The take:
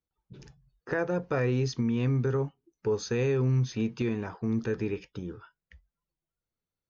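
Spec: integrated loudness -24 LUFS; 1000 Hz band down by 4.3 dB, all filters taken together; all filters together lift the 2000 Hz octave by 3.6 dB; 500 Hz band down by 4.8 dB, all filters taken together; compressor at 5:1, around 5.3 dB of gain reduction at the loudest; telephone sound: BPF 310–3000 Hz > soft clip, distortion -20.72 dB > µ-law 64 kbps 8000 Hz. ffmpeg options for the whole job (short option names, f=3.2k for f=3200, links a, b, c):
-af "equalizer=f=500:t=o:g=-3.5,equalizer=f=1k:t=o:g=-8,equalizer=f=2k:t=o:g=8.5,acompressor=threshold=-29dB:ratio=5,highpass=310,lowpass=3k,asoftclip=threshold=-26.5dB,volume=16dB" -ar 8000 -c:a pcm_mulaw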